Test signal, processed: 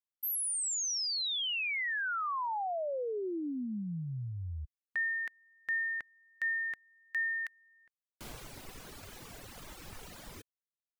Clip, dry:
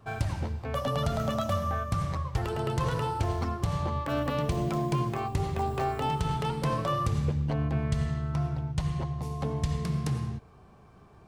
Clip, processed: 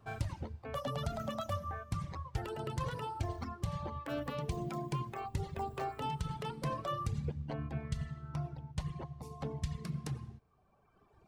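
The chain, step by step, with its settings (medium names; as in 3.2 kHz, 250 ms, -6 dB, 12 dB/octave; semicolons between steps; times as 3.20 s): reverb removal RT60 1.7 s; trim -6.5 dB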